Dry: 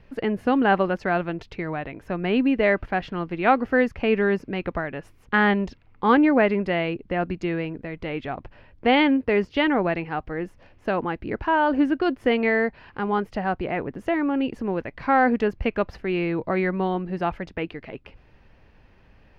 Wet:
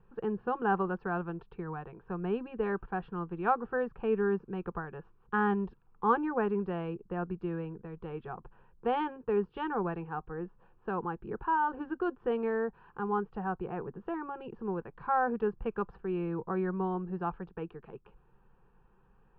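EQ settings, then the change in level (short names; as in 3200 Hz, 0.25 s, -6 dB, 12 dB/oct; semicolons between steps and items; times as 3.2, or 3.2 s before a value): ladder low-pass 2500 Hz, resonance 30%; air absorption 63 m; fixed phaser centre 410 Hz, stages 8; 0.0 dB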